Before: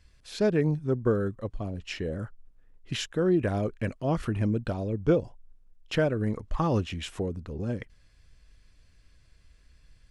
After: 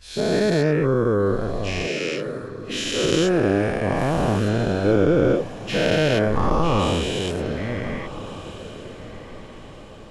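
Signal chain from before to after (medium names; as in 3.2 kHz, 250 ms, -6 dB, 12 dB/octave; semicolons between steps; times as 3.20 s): every event in the spectrogram widened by 480 ms; 1.87–3.04 s: steep high-pass 220 Hz 48 dB/octave; echo that smears into a reverb 1456 ms, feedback 43%, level -14 dB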